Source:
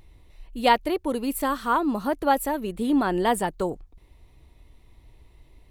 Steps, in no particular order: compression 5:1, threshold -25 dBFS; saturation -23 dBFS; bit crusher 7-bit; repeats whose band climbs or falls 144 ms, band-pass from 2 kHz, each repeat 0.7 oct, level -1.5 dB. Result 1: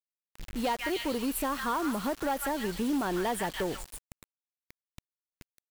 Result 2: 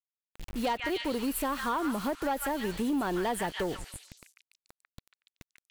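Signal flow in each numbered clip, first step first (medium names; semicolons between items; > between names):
repeats whose band climbs or falls > compression > saturation > bit crusher; bit crusher > repeats whose band climbs or falls > compression > saturation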